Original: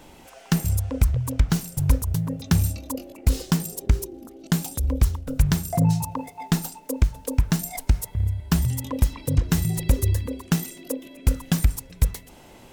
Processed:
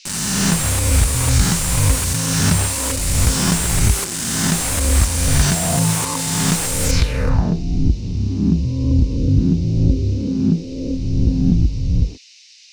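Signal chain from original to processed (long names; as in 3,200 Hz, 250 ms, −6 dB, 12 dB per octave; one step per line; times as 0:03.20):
peak hold with a rise ahead of every peak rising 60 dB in 1.49 s
noise gate with hold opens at −25 dBFS
high-shelf EQ 7,300 Hz +5.5 dB
bit reduction 5 bits
low-pass filter sweep 8,500 Hz → 300 Hz, 0:06.83–0:07.64
noise in a band 2,200–5,900 Hz −52 dBFS
parametric band 15,000 Hz +11.5 dB 2.1 octaves
notch filter 3,300 Hz, Q 10
slew-rate limiting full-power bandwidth 650 Hz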